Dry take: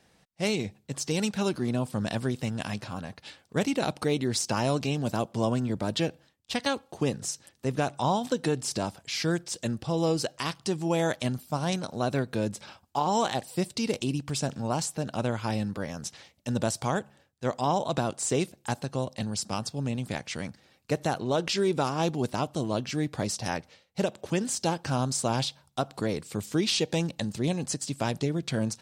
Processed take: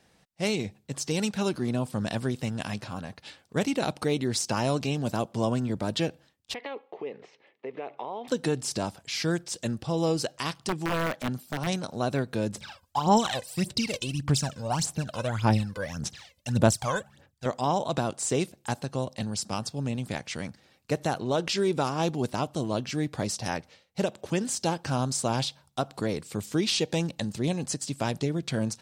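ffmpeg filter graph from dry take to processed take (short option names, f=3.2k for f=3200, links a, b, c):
-filter_complex "[0:a]asettb=1/sr,asplit=3[a][b][c];[a]atrim=end=6.544[d];[b]atrim=start=6.54:end=8.28,asetpts=PTS-STARTPTS,afade=t=in:d=0.004:c=qsin,afade=t=out:st=1.736:d=0.004:c=qsin,acompressor=threshold=-30dB:ratio=10:attack=3.2:release=140:knee=1:detection=peak,highpass=400,equalizer=f=430:t=q:w=4:g=9,equalizer=f=1.5k:t=q:w=4:g=-9,equalizer=f=2.1k:t=q:w=4:g=7,lowpass=f=2.8k:w=0.5412,lowpass=f=2.8k:w=1.3066[e];[c]atrim=start=8.276[f];[d][e]acrossfade=d=0.004:c1=hsin:c2=qsin[g];[g][f]acrossfade=d=0.004:c1=qsin:c2=hsin,asettb=1/sr,asplit=3[h][i][j];[h]atrim=end=10.674[k];[i]atrim=start=10.67:end=11.67,asetpts=PTS-STARTPTS,afade=t=in:d=0.004:c=qsin,afade=t=out:st=0.996:d=0.004:c=qsin,highpass=110,aeval=exprs='(mod(10*val(0)+1,2)-1)/10':c=same,acrossover=split=3200[l][m];[m]acompressor=threshold=-41dB:ratio=4:attack=1:release=60[n];[l][n]amix=inputs=2:normalize=0[o];[j]atrim=start=11.666[p];[k][o]acrossfade=d=0.004:c1=hsin:c2=qsin[q];[q][p]acrossfade=d=0.004:c1=qsin:c2=hsin,asettb=1/sr,asplit=3[r][s][t];[r]atrim=end=12.544[u];[s]atrim=start=12.54:end=17.46,asetpts=PTS-STARTPTS,afade=t=in:d=0.004:c=qsin,afade=t=out:st=4.916:d=0.004:c=qsin,equalizer=f=440:t=o:w=2.4:g=-4,aphaser=in_gain=1:out_gain=1:delay=2:decay=0.72:speed=1.7:type=sinusoidal[v];[t]atrim=start=17.456[w];[u][v]acrossfade=d=0.004:c1=hsin:c2=qsin[x];[x][w]acrossfade=d=0.004:c1=qsin:c2=hsin"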